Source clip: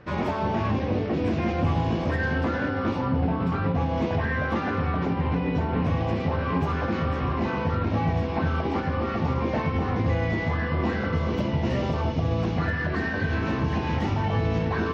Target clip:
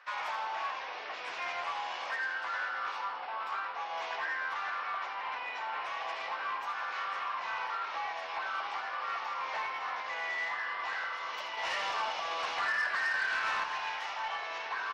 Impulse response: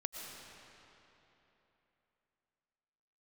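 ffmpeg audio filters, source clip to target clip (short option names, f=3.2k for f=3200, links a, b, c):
-filter_complex "[0:a]highpass=f=930:w=0.5412,highpass=f=930:w=1.3066,alimiter=level_in=1.5dB:limit=-24dB:level=0:latency=1:release=436,volume=-1.5dB,asettb=1/sr,asplit=3[a][b][c];[a]atrim=end=11.574[d];[b]atrim=start=11.57:end=13.64,asetpts=PTS-STARTPTS,afade=t=in:d=0.004:c=qsin,afade=t=out:st=2.066:d=0.004:c=qsin,acontrast=31[e];[c]atrim=start=13.636[f];[d][e]acrossfade=d=0.004:c1=hsin:c2=qsin[g];[g][f]acrossfade=d=0.004:c1=qsin:c2=hsin,asoftclip=type=tanh:threshold=-25.5dB,asplit=7[h][i][j][k][l][m][n];[i]adelay=82,afreqshift=-84,volume=-10dB[o];[j]adelay=164,afreqshift=-168,volume=-15.4dB[p];[k]adelay=246,afreqshift=-252,volume=-20.7dB[q];[l]adelay=328,afreqshift=-336,volume=-26.1dB[r];[m]adelay=410,afreqshift=-420,volume=-31.4dB[s];[n]adelay=492,afreqshift=-504,volume=-36.8dB[t];[h][o][p][q][r][s][t]amix=inputs=7:normalize=0"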